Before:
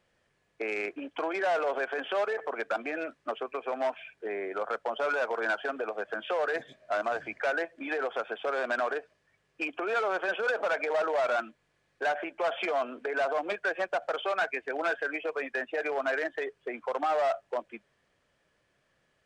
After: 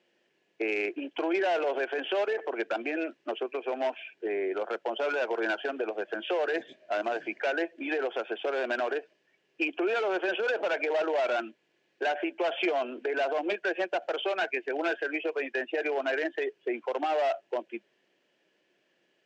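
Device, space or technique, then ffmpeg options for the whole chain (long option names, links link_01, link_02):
television speaker: -af "highpass=frequency=190:width=0.5412,highpass=frequency=190:width=1.3066,equalizer=frequency=350:width_type=q:width=4:gain=10,equalizer=frequency=1200:width_type=q:width=4:gain=-9,equalizer=frequency=2800:width_type=q:width=4:gain=7,lowpass=frequency=7100:width=0.5412,lowpass=frequency=7100:width=1.3066"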